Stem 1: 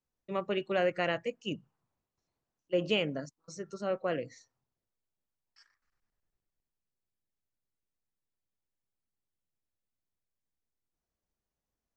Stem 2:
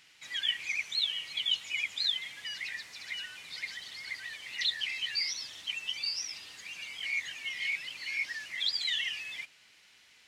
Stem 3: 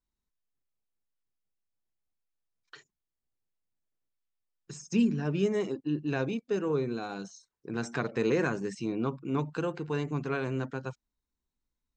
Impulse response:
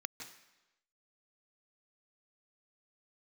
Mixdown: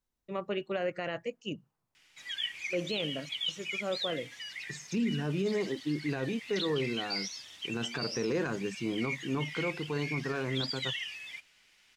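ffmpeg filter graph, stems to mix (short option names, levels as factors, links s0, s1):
-filter_complex "[0:a]volume=0.841[s0];[1:a]bandreject=f=4100:w=18,adelay=1950,volume=0.668[s1];[2:a]volume=0.891[s2];[s0][s1][s2]amix=inputs=3:normalize=0,alimiter=limit=0.0708:level=0:latency=1:release=12"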